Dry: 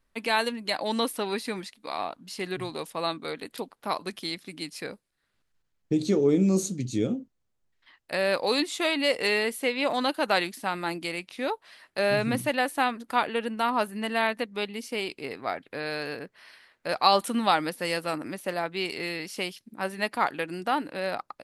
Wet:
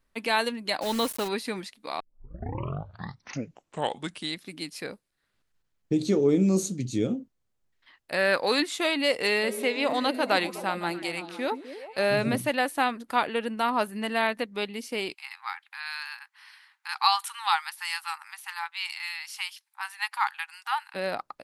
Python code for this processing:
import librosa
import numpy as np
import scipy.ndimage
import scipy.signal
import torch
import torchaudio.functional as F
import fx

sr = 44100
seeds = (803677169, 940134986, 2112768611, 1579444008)

y = fx.quant_dither(x, sr, seeds[0], bits=6, dither='none', at=(0.81, 1.27), fade=0.02)
y = fx.peak_eq(y, sr, hz=1600.0, db=7.5, octaves=0.7, at=(8.17, 8.76))
y = fx.echo_stepped(y, sr, ms=127, hz=230.0, octaves=0.7, feedback_pct=70, wet_db=-5.5, at=(9.42, 12.36), fade=0.02)
y = fx.brickwall_highpass(y, sr, low_hz=780.0, at=(15.13, 20.94), fade=0.02)
y = fx.edit(y, sr, fx.tape_start(start_s=2.0, length_s=2.42), tone=tone)